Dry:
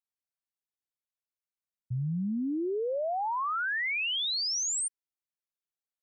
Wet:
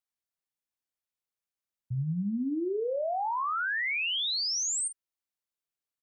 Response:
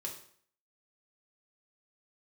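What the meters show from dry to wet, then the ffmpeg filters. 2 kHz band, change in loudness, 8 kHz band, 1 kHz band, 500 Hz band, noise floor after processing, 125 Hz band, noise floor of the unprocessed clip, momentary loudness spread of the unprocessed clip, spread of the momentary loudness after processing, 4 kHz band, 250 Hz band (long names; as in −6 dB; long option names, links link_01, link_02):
+0.5 dB, +0.5 dB, +0.5 dB, +0.5 dB, +0.5 dB, below −85 dBFS, +0.5 dB, below −85 dBFS, 6 LU, 6 LU, +0.5 dB, +0.5 dB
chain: -filter_complex "[0:a]asplit=2[link_01][link_02];[link_02]adelay=45,volume=-11dB[link_03];[link_01][link_03]amix=inputs=2:normalize=0"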